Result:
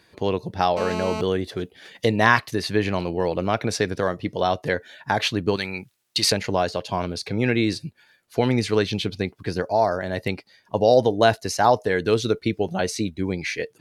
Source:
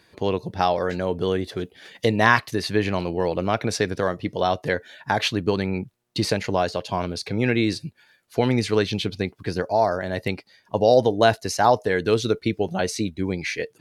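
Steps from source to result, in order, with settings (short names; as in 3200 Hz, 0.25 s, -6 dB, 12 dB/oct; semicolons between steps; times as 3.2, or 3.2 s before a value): 0.77–1.21 GSM buzz -29 dBFS; 5.56–6.32 tilt shelf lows -9.5 dB, about 1100 Hz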